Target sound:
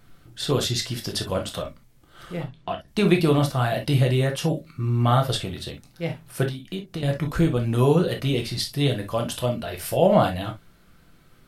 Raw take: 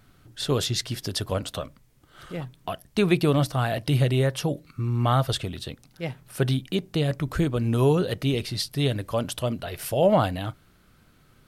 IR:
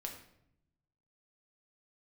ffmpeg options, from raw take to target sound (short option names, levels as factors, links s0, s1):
-filter_complex "[0:a]asettb=1/sr,asplit=3[s0][s1][s2];[s0]atrim=end=2.434[s3];[s1]atrim=start=2.43:end=2.88,asetpts=PTS-STARTPTS,afade=t=in:d=0.004:c=qsin,afade=t=out:st=0.446:d=0.004:c=qsin,lowpass=4500[s4];[s2]atrim=start=2.876[s5];[s3][s4]acrossfade=d=0.004:c1=hsin:c2=qsin[s6];[s6][s5]acrossfade=d=0.004:c1=qsin:c2=hsin,asettb=1/sr,asplit=3[s7][s8][s9];[s7]atrim=end=6.434[s10];[s8]atrim=start=6.43:end=7.03,asetpts=PTS-STARTPTS,afade=t=in:d=0.004:c=qsin,afade=t=out:st=0.596:d=0.004:c=qsin,acompressor=threshold=0.0282:ratio=6[s11];[s9]atrim=start=7.026[s12];[s10][s11]acrossfade=d=0.004:c1=hsin:c2=qsin[s13];[s13][s12]acrossfade=d=0.004:c1=qsin:c2=hsin[s14];[1:a]atrim=start_sample=2205,atrim=end_sample=3087[s15];[s14][s15]afir=irnorm=-1:irlink=0,volume=1.68"